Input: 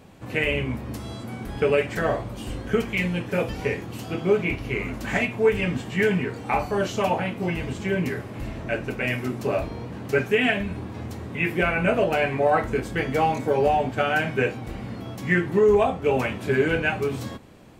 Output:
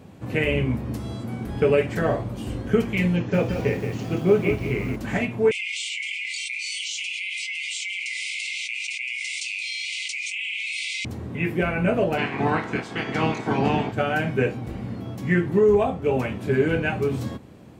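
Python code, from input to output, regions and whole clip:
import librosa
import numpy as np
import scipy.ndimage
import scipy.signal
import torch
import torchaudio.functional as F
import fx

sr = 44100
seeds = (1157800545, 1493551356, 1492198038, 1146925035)

y = fx.chain(x, sr, fx.resample_bad(factor=3, down='none', up='filtered'),
    fx.echo_crushed(ms=176, feedback_pct=35, bits=7, wet_db=-7), at=(3.16, 4.96))
y = fx.chain(y, sr, fx.brickwall_bandpass(low_hz=2000.0, high_hz=9500.0),
    fx.env_flatten(amount_pct=100), at=(5.51, 11.05))
y = fx.spec_clip(y, sr, under_db=19, at=(12.17, 13.91), fade=0.02)
y = fx.bandpass_edges(y, sr, low_hz=120.0, high_hz=5500.0, at=(12.17, 13.91), fade=0.02)
y = fx.notch(y, sr, hz=570.0, q=5.8, at=(12.17, 13.91), fade=0.02)
y = scipy.signal.sosfilt(scipy.signal.butter(2, 69.0, 'highpass', fs=sr, output='sos'), y)
y = fx.rider(y, sr, range_db=3, speed_s=2.0)
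y = fx.low_shelf(y, sr, hz=480.0, db=8.0)
y = F.gain(torch.from_numpy(y), -4.5).numpy()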